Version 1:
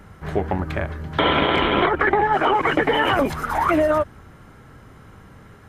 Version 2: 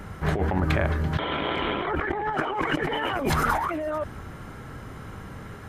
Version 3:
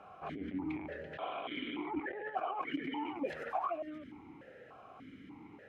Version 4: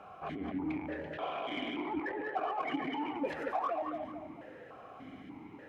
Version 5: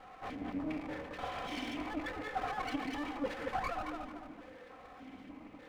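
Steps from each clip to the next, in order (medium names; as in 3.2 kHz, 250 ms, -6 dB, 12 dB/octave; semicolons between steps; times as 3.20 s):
compressor with a negative ratio -26 dBFS, ratio -1
peak limiter -19 dBFS, peak gain reduction 9 dB; stepped vowel filter 3.4 Hz; trim +1 dB
band-passed feedback delay 222 ms, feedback 42%, band-pass 590 Hz, level -5 dB; in parallel at -7.5 dB: saturation -38 dBFS, distortion -10 dB
comb filter that takes the minimum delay 3.9 ms; trim -1 dB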